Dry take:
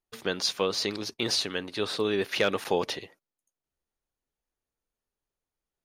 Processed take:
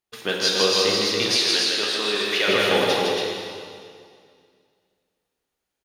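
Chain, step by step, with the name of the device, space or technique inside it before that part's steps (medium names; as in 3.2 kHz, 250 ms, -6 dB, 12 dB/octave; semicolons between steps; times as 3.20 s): stadium PA (high-pass 130 Hz 6 dB/octave; peaking EQ 3.1 kHz +3.5 dB 1.6 oct; loudspeakers at several distances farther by 54 m -3 dB, 96 m -4 dB; reverberation RT60 2.2 s, pre-delay 9 ms, DRR -1 dB); 1.35–2.47 s: high-pass 310 Hz -> 960 Hz 6 dB/octave; trim +2 dB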